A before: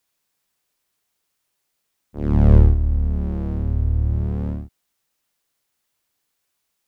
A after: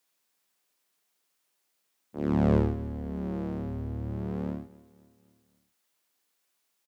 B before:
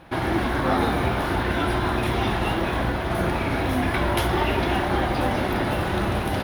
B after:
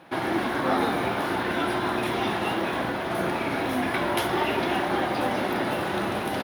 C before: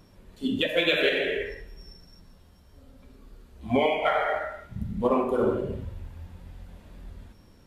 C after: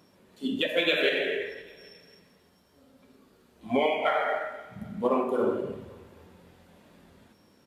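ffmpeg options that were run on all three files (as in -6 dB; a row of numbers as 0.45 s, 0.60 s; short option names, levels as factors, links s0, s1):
-filter_complex "[0:a]highpass=190,asplit=2[s0][s1];[s1]aecho=0:1:264|528|792|1056:0.0944|0.0463|0.0227|0.0111[s2];[s0][s2]amix=inputs=2:normalize=0,volume=0.841"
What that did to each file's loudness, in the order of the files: -10.5 LU, -2.5 LU, -1.5 LU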